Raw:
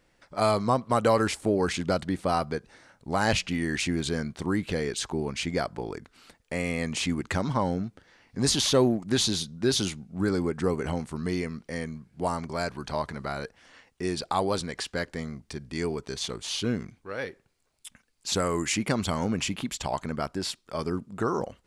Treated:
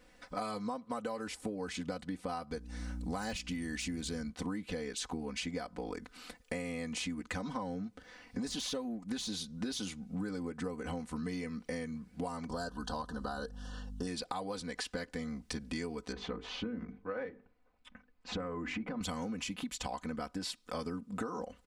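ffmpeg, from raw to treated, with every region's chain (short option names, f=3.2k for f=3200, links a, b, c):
-filter_complex "[0:a]asettb=1/sr,asplit=3[a][b][c];[a]atrim=end=2.514[d];[b]atrim=start=2.51:end=4.3,asetpts=PTS-STARTPTS,afade=t=in:d=0.004:c=qsin,afade=t=out:st=1.786:d=0.004:c=qsin,bass=f=250:g=3,treble=f=4k:g=6,aeval=exprs='val(0)+0.01*(sin(2*PI*60*n/s)+sin(2*PI*2*60*n/s)/2+sin(2*PI*3*60*n/s)/3+sin(2*PI*4*60*n/s)/4+sin(2*PI*5*60*n/s)/5)':c=same[e];[c]atrim=start=4.296[f];[d][e]acrossfade=d=0.004:c1=hsin:c2=qsin[g];[g][f]acrossfade=d=0.004:c1=qsin:c2=hsin,asettb=1/sr,asplit=3[h][i][j];[h]atrim=end=12.504[k];[i]atrim=start=12.5:end=14.07,asetpts=PTS-STARTPTS,afade=t=in:d=0.004:c=qsin,afade=t=out:st=1.566:d=0.004:c=qsin,asuperstop=centerf=2200:order=8:qfactor=2,aeval=exprs='val(0)+0.00501*(sin(2*PI*50*n/s)+sin(2*PI*2*50*n/s)/2+sin(2*PI*3*50*n/s)/3+sin(2*PI*4*50*n/s)/4+sin(2*PI*5*50*n/s)/5)':c=same,asoftclip=type=hard:threshold=-18dB[l];[j]atrim=start=14.066[m];[k][l]acrossfade=d=0.004:c1=hsin:c2=qsin[n];[n][m]acrossfade=d=0.004:c1=qsin:c2=hsin,asettb=1/sr,asplit=3[o][p][q];[o]atrim=end=16.124[r];[p]atrim=start=16.12:end=19.01,asetpts=PTS-STARTPTS,afade=t=in:d=0.004:c=qsin,afade=t=out:st=2.886:d=0.004:c=qsin,lowpass=1.6k,acompressor=threshold=-28dB:ratio=6:attack=3.2:release=140:knee=1:detection=peak,bandreject=f=50:t=h:w=6,bandreject=f=100:t=h:w=6,bandreject=f=150:t=h:w=6,bandreject=f=200:t=h:w=6,bandreject=f=250:t=h:w=6,bandreject=f=300:t=h:w=6,bandreject=f=350:t=h:w=6,bandreject=f=400:t=h:w=6,bandreject=f=450:t=h:w=6[s];[q]atrim=start=19.006[t];[r][s]acrossfade=d=0.004:c1=hsin:c2=qsin[u];[u][t]acrossfade=d=0.004:c1=qsin:c2=hsin,deesser=0.5,aecho=1:1:4:0.92,acompressor=threshold=-36dB:ratio=16,volume=1dB"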